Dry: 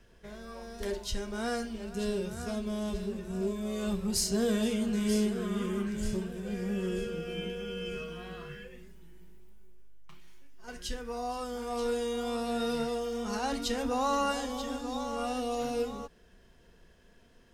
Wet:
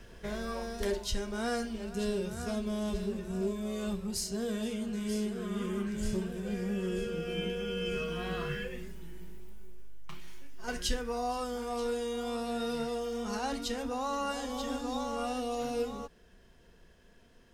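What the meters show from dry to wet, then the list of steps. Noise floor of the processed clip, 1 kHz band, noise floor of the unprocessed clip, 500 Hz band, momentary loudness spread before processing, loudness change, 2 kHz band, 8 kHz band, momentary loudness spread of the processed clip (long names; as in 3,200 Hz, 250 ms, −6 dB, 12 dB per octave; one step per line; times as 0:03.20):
−60 dBFS, −1.5 dB, −60 dBFS, −1.0 dB, 14 LU, −2.0 dB, +0.5 dB, −3.0 dB, 6 LU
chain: speech leveller 0.5 s
level −1.5 dB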